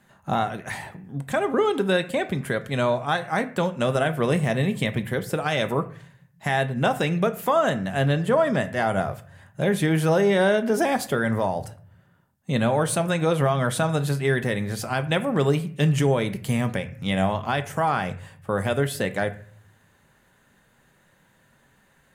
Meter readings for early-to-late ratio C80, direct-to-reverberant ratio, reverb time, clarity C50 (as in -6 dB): 19.0 dB, 9.0 dB, 0.50 s, 15.5 dB